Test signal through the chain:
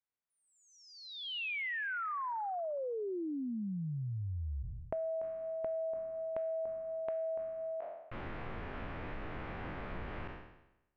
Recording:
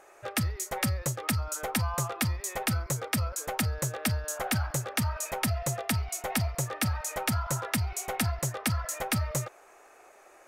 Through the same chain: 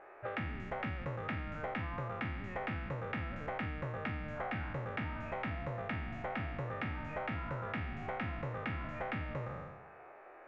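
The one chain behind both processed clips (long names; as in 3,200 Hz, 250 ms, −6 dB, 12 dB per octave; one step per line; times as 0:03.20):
peak hold with a decay on every bin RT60 0.90 s
low-pass filter 2,300 Hz 24 dB per octave
downward compressor 6 to 1, threshold −35 dBFS
level −1.5 dB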